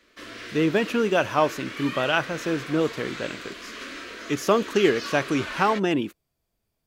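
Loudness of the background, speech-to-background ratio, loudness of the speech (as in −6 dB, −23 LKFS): −36.0 LKFS, 11.5 dB, −24.5 LKFS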